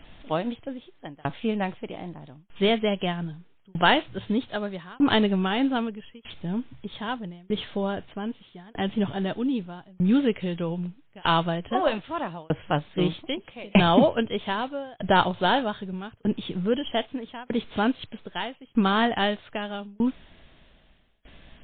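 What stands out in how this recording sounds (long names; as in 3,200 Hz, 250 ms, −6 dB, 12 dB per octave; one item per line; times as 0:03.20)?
a quantiser's noise floor 10 bits, dither triangular
tremolo saw down 0.8 Hz, depth 100%
MP3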